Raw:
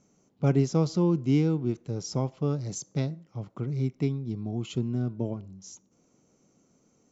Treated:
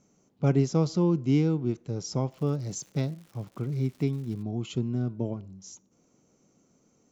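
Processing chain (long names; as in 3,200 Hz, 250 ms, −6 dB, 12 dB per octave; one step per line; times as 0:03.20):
0:02.30–0:04.41: surface crackle 250 per second −44 dBFS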